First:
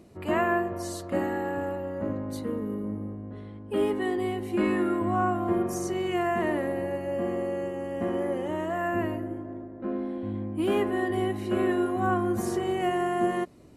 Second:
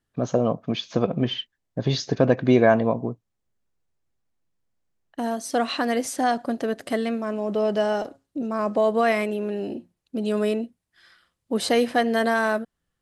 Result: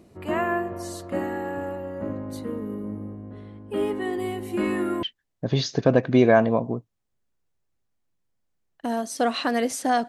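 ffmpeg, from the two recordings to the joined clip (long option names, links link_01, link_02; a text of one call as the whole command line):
ffmpeg -i cue0.wav -i cue1.wav -filter_complex "[0:a]asettb=1/sr,asplit=3[link_01][link_02][link_03];[link_01]atrim=end=4.134[link_04];[link_02]atrim=start=4.13:end=5.03,asetpts=PTS-STARTPTS,afade=type=in:duration=0.004:curve=qsin,afade=type=out:start_time=0.896:duration=0.004:curve=qsin,highshelf=frequency=6300:gain=8[link_05];[link_03]atrim=start=5.026[link_06];[link_04][link_05]acrossfade=duration=0.004:curve1=hsin:curve2=qsin[link_07];[link_07][link_06]acrossfade=duration=0.004:curve1=qsin:curve2=hsin,apad=whole_dur=10.08,atrim=end=10.08,atrim=end=5.032[link_08];[1:a]atrim=start=1.368:end=6.42[link_09];[link_08][link_09]acrossfade=duration=0.004:curve1=hsin:curve2=hsin" out.wav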